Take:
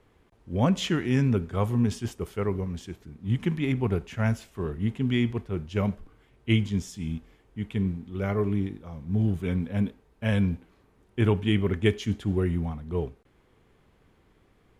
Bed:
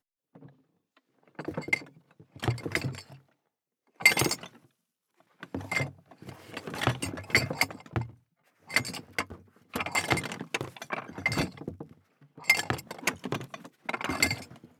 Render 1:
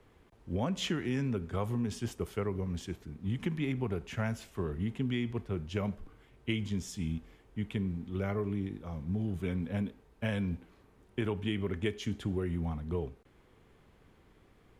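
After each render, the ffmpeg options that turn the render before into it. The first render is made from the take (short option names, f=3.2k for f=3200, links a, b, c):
-filter_complex "[0:a]acrossover=split=200[a][b];[a]alimiter=level_in=1.5dB:limit=-24dB:level=0:latency=1,volume=-1.5dB[c];[c][b]amix=inputs=2:normalize=0,acompressor=threshold=-30dB:ratio=4"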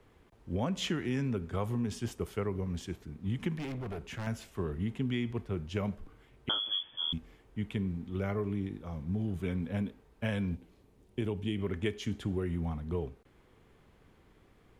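-filter_complex "[0:a]asettb=1/sr,asplit=3[a][b][c];[a]atrim=end=3.584[d];[b]atrim=start=3.58:end=4.27,asetpts=PTS-STARTPTS,afade=t=in:d=0.004:c=qsin,afade=t=out:st=0.686:d=0.004:c=qsin,volume=35.5dB,asoftclip=hard,volume=-35.5dB[e];[c]atrim=start=4.266[f];[d][e]acrossfade=d=0.004:c1=hsin:c2=qsin[g];[g][f]acrossfade=d=0.004:c1=qsin:c2=hsin,asettb=1/sr,asplit=3[h][i][j];[h]atrim=end=6.494[k];[i]atrim=start=6.49:end=7.13,asetpts=PTS-STARTPTS,afade=t=in:d=0.004:c=qsin,afade=t=out:st=0.636:d=0.004:c=qsin,lowpass=f=3k:t=q:w=0.5098,lowpass=f=3k:t=q:w=0.6013,lowpass=f=3k:t=q:w=0.9,lowpass=f=3k:t=q:w=2.563,afreqshift=-3500[l];[j]atrim=start=7.126[m];[k][l]acrossfade=d=0.004:c1=hsin:c2=qsin[n];[n][m]acrossfade=d=0.004:c1=qsin:c2=hsin,asettb=1/sr,asplit=3[o][p][q];[o]atrim=end=10.554[r];[p]atrim=start=10.55:end=11.59,asetpts=PTS-STARTPTS,afade=t=in:d=0.004:c=qsin,afade=t=out:st=1.036:d=0.004:c=qsin,equalizer=f=1.4k:t=o:w=1.5:g=-9.5[s];[q]atrim=start=11.586[t];[r][s]acrossfade=d=0.004:c1=hsin:c2=qsin[u];[u][t]acrossfade=d=0.004:c1=qsin:c2=hsin"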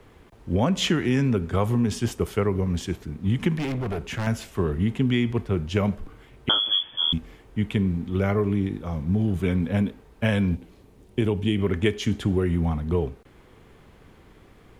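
-af "volume=10.5dB"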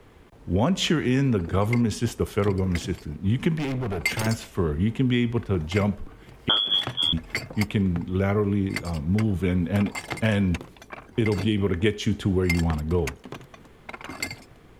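-filter_complex "[1:a]volume=-5.5dB[a];[0:a][a]amix=inputs=2:normalize=0"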